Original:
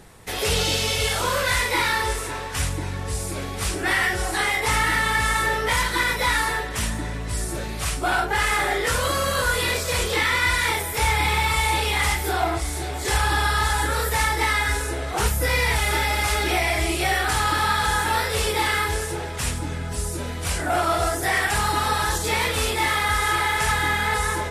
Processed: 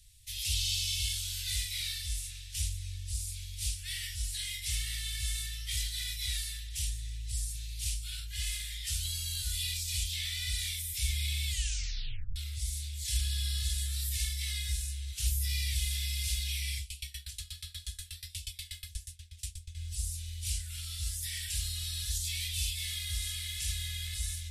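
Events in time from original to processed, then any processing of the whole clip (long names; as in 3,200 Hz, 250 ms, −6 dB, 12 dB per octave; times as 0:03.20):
0:11.46: tape stop 0.90 s
0:16.78–0:19.75: tremolo with a ramp in dB decaying 8.3 Hz, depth 26 dB
whole clip: inverse Chebyshev band-stop filter 330–830 Hz, stop band 80 dB; level −6.5 dB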